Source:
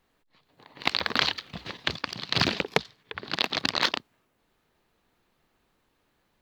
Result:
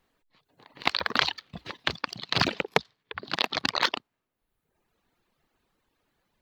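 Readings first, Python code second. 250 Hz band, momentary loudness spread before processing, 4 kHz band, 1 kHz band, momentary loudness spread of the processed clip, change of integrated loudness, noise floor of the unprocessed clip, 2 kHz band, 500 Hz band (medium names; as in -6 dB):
-1.5 dB, 11 LU, -1.5 dB, +2.0 dB, 13 LU, -0.5 dB, -72 dBFS, 0.0 dB, 0.0 dB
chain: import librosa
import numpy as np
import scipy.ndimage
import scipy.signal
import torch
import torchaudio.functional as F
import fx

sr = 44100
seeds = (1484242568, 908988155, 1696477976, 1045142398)

y = fx.dereverb_blind(x, sr, rt60_s=1.0)
y = fx.dynamic_eq(y, sr, hz=990.0, q=0.74, threshold_db=-42.0, ratio=4.0, max_db=4)
y = y * 10.0 ** (-1.0 / 20.0)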